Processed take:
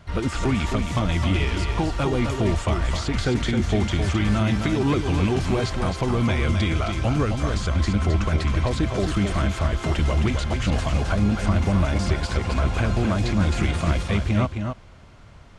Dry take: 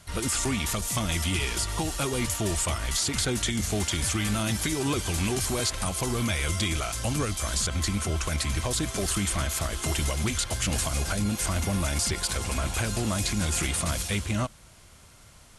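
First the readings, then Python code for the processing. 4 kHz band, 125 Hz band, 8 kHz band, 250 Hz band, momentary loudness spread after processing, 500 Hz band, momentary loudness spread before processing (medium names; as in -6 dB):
-2.0 dB, +7.5 dB, -12.0 dB, +7.5 dB, 3 LU, +6.5 dB, 2 LU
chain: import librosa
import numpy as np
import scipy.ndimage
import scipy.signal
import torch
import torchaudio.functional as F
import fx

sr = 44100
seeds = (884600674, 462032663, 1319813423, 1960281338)

y = fx.spacing_loss(x, sr, db_at_10k=27)
y = y + 10.0 ** (-6.0 / 20.0) * np.pad(y, (int(264 * sr / 1000.0), 0))[:len(y)]
y = y * 10.0 ** (7.0 / 20.0)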